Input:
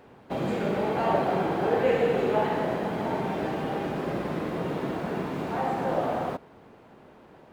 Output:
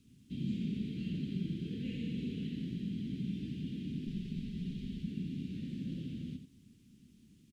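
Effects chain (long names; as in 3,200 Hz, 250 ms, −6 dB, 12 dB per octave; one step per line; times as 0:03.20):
0:04.07–0:05.03: lower of the sound and its delayed copy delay 4.9 ms
Chebyshev band-stop filter 240–3,100 Hz, order 3
high-shelf EQ 3,600 Hz −7 dB
background noise violet −59 dBFS
high-frequency loss of the air 80 metres
single-tap delay 88 ms −9 dB
level −3.5 dB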